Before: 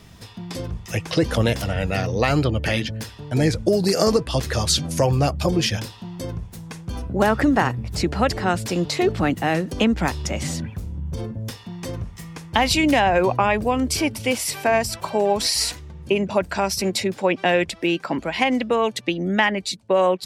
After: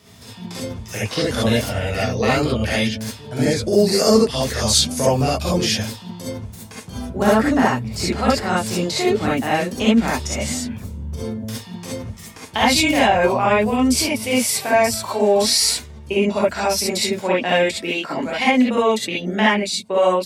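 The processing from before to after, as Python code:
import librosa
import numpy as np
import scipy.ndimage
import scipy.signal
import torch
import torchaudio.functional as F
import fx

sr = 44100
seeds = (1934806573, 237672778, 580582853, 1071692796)

y = scipy.signal.sosfilt(scipy.signal.butter(2, 87.0, 'highpass', fs=sr, output='sos'), x)
y = fx.bass_treble(y, sr, bass_db=-2, treble_db=4)
y = fx.rev_gated(y, sr, seeds[0], gate_ms=90, shape='rising', drr_db=-6.5)
y = F.gain(torch.from_numpy(y), -5.0).numpy()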